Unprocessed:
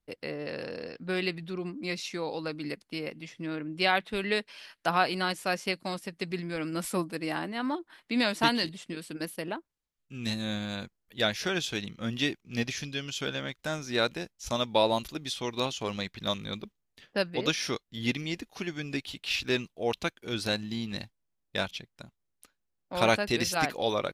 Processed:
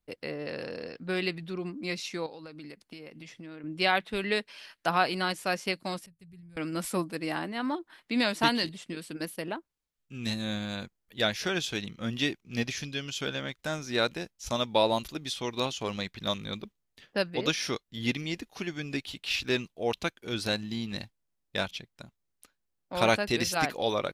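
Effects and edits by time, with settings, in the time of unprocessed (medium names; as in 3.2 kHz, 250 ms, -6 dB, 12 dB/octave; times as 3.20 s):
2.26–3.64 s: compression 8:1, threshold -41 dBFS
6.06–6.57 s: FFT filter 110 Hz 0 dB, 310 Hz -28 dB, 5 kHz -28 dB, 9.5 kHz -13 dB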